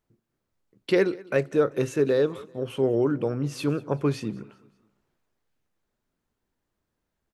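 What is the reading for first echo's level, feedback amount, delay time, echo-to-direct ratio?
-22.5 dB, 43%, 0.192 s, -21.5 dB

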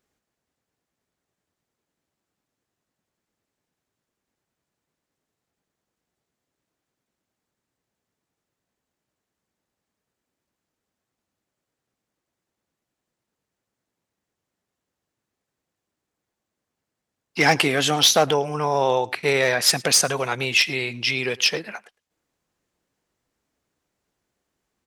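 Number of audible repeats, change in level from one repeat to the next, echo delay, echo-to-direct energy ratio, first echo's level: 1, no steady repeat, 0.107 s, -23.5 dB, -23.5 dB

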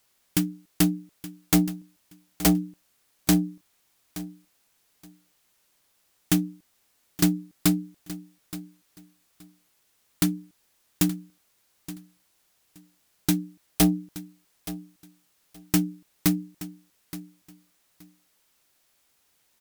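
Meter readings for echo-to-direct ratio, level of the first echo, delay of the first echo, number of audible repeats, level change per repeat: -15.5 dB, -15.5 dB, 0.873 s, 2, -14.5 dB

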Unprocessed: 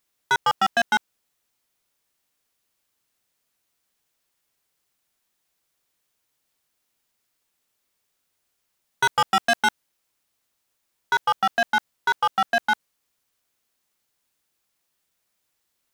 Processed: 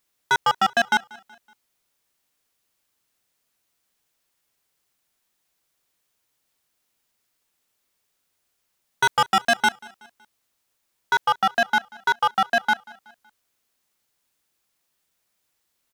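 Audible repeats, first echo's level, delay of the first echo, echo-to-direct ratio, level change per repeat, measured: 2, -23.5 dB, 0.187 s, -22.5 dB, -6.5 dB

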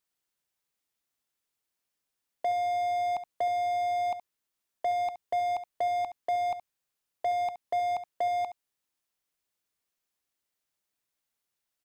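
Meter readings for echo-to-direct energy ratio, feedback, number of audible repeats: -13.0 dB, no steady repeat, 1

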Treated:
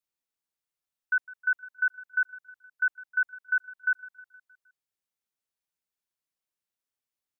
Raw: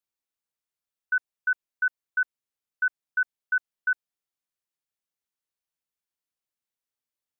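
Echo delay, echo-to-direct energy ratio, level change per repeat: 0.156 s, -18.0 dB, -5.0 dB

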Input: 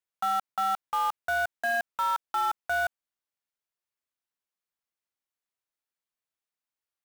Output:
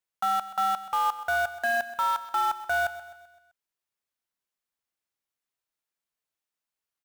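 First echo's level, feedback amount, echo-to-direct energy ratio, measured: -14.5 dB, 50%, -13.5 dB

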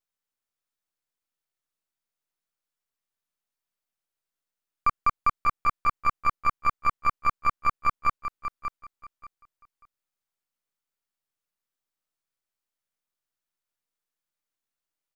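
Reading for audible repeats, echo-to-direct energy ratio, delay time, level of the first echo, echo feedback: 2, -9.0 dB, 0.586 s, -9.0 dB, 21%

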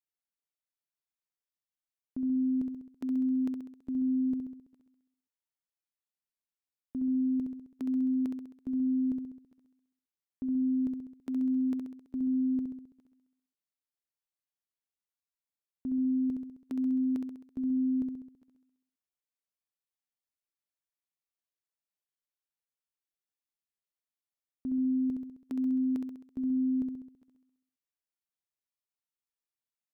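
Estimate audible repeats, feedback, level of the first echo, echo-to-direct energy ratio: 7, 58%, -5.0 dB, -3.0 dB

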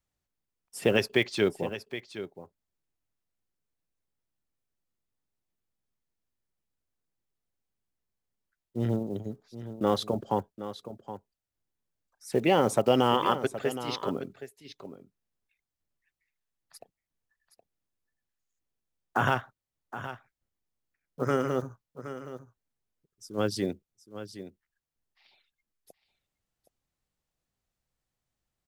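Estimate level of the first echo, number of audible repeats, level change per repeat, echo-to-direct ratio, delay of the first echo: -12.5 dB, 1, no steady repeat, -12.5 dB, 0.769 s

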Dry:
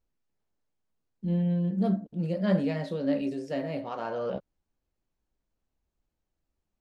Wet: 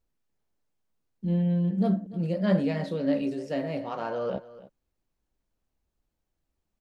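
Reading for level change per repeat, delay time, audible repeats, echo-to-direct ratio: no steady repeat, 0.293 s, 1, -17.5 dB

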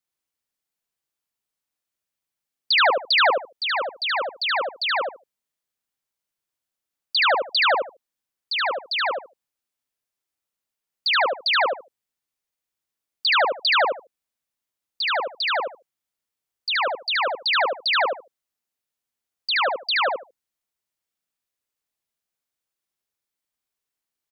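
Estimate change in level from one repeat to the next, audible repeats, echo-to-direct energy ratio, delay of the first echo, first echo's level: -15.5 dB, 3, -3.0 dB, 74 ms, -3.0 dB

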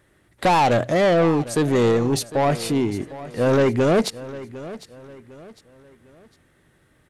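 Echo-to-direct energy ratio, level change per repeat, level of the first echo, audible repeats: -16.0 dB, -8.5 dB, -16.5 dB, 3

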